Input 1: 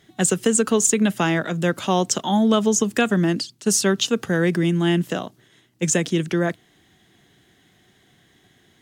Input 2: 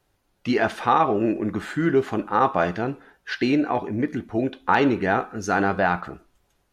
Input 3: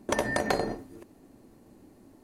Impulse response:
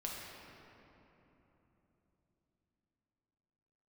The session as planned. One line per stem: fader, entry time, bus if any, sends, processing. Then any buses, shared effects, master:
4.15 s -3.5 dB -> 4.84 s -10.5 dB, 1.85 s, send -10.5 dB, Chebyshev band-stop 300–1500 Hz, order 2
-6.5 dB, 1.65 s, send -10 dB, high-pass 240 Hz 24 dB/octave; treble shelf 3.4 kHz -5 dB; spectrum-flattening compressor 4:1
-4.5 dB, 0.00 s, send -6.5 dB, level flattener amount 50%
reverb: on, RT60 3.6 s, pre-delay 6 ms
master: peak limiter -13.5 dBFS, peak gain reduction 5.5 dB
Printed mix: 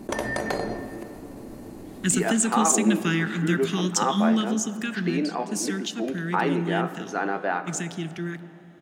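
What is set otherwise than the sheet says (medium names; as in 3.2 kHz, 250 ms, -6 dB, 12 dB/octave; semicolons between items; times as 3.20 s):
stem 2: missing spectrum-flattening compressor 4:1; master: missing peak limiter -13.5 dBFS, peak gain reduction 5.5 dB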